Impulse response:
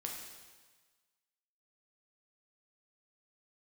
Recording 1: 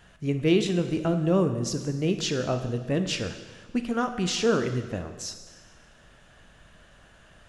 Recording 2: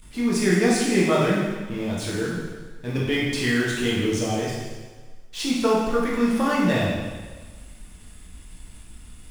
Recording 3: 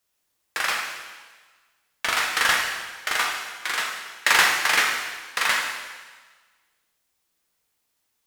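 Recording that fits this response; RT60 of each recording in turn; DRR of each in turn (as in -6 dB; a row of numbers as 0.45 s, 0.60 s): 3; 1.4 s, 1.4 s, 1.4 s; 7.0 dB, -6.0 dB, -0.5 dB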